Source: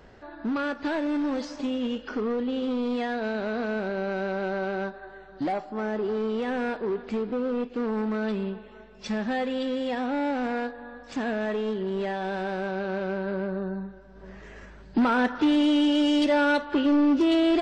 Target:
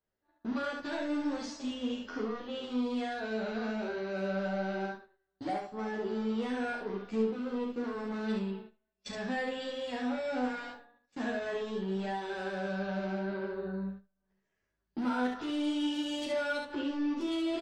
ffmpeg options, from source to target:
-filter_complex "[0:a]agate=range=0.0282:threshold=0.0126:ratio=16:detection=peak,asplit=2[s0][s1];[s1]aecho=0:1:77:0.133[s2];[s0][s2]amix=inputs=2:normalize=0,alimiter=limit=0.075:level=0:latency=1:release=328,aemphasis=mode=production:type=50kf,asplit=2[s3][s4];[s4]aecho=0:1:36|68:0.501|0.668[s5];[s3][s5]amix=inputs=2:normalize=0,asplit=2[s6][s7];[s7]adelay=11.1,afreqshift=0.83[s8];[s6][s8]amix=inputs=2:normalize=1,volume=0.562"

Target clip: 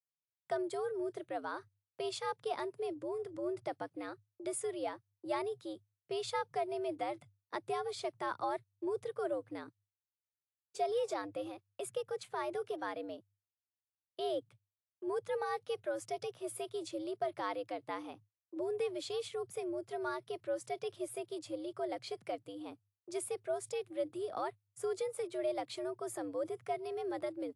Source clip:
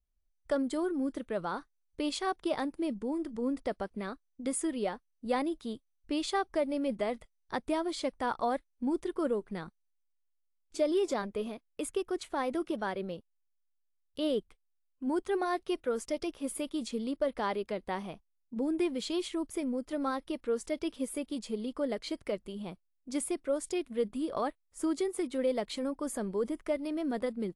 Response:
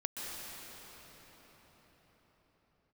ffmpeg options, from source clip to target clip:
-af "agate=range=0.0224:threshold=0.00178:ratio=16:detection=peak,afreqshift=99,volume=0.531"

